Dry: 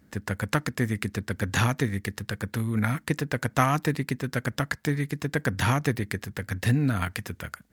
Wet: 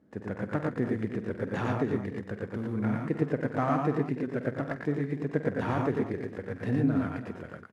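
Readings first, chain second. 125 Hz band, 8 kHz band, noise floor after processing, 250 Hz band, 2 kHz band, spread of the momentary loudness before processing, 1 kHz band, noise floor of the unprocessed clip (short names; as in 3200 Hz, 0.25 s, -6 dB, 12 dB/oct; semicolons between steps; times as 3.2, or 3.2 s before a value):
-6.0 dB, under -20 dB, -46 dBFS, -0.5 dB, -9.5 dB, 9 LU, -4.5 dB, -60 dBFS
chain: CVSD 64 kbps; band-pass 410 Hz, Q 0.91; tapped delay 48/94/113/128/294/326 ms -12/-5.5/-3/-17.5/-15/-13.5 dB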